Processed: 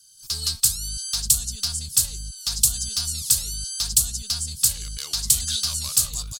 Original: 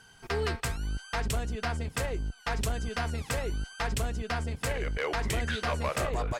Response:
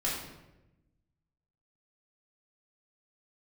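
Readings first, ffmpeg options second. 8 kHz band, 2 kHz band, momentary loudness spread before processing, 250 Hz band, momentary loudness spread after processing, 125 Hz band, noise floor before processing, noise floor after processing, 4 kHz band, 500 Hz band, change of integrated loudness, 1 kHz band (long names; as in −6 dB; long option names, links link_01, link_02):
+22.0 dB, −10.5 dB, 4 LU, −8.5 dB, 8 LU, −2.0 dB, −55 dBFS, −43 dBFS, +15.0 dB, below −20 dB, +10.5 dB, −13.0 dB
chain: -af "dynaudnorm=framelen=170:gausssize=3:maxgain=14dB,firequalizer=gain_entry='entry(140,0);entry(310,-15);entry(500,-22);entry(1200,-7);entry(1900,-13);entry(4400,14)':delay=0.05:min_phase=1,aexciter=amount=3.4:drive=3.8:freq=3000,volume=-16dB"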